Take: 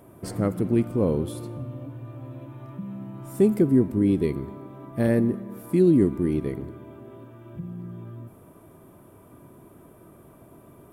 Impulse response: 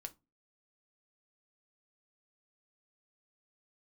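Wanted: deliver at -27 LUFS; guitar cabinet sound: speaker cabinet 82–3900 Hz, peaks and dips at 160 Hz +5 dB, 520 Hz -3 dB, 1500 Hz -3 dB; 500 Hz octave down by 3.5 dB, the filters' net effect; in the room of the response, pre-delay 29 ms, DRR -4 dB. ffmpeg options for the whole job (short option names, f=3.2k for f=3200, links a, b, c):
-filter_complex "[0:a]equalizer=f=500:t=o:g=-4.5,asplit=2[a][b];[1:a]atrim=start_sample=2205,adelay=29[c];[b][c]afir=irnorm=-1:irlink=0,volume=8.5dB[d];[a][d]amix=inputs=2:normalize=0,highpass=82,equalizer=f=160:t=q:w=4:g=5,equalizer=f=520:t=q:w=4:g=-3,equalizer=f=1.5k:t=q:w=4:g=-3,lowpass=f=3.9k:w=0.5412,lowpass=f=3.9k:w=1.3066,volume=-7.5dB"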